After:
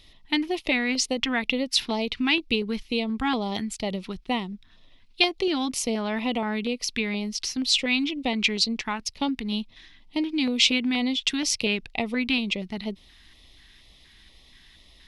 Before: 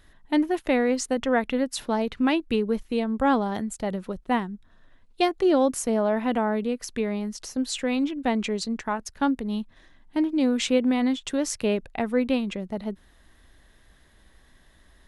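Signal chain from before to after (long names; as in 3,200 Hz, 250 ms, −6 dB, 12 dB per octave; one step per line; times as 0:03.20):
auto-filter notch square 2.1 Hz 550–1,600 Hz
downward compressor 3 to 1, threshold −23 dBFS, peak gain reduction 5 dB
flat-topped bell 3,400 Hz +12.5 dB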